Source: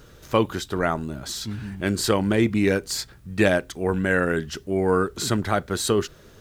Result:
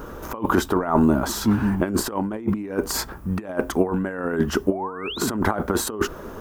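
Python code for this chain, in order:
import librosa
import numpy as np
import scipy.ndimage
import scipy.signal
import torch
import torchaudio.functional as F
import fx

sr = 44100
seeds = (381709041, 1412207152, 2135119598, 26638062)

y = fx.spec_paint(x, sr, seeds[0], shape='rise', start_s=4.71, length_s=0.5, low_hz=550.0, high_hz=4500.0, level_db=-25.0)
y = fx.over_compress(y, sr, threshold_db=-28.0, ratio=-0.5)
y = fx.graphic_eq_10(y, sr, hz=(125, 250, 1000, 2000, 4000, 8000), db=(-9, 6, 10, -5, -12, -7))
y = y * librosa.db_to_amplitude(6.5)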